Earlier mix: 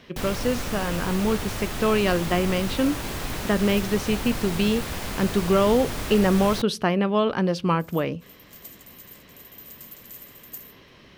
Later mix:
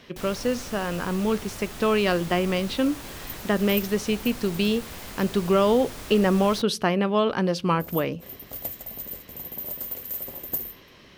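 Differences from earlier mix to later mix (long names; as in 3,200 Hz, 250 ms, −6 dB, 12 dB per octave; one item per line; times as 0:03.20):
first sound −8.0 dB
second sound: remove resonant band-pass 6,600 Hz, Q 0.85
master: add bass and treble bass −2 dB, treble +3 dB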